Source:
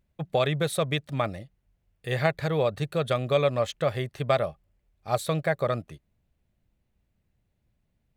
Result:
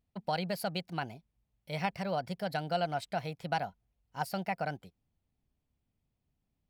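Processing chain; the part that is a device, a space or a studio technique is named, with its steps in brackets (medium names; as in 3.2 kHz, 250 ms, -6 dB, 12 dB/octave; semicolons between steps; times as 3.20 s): nightcore (tape speed +22%); trim -8.5 dB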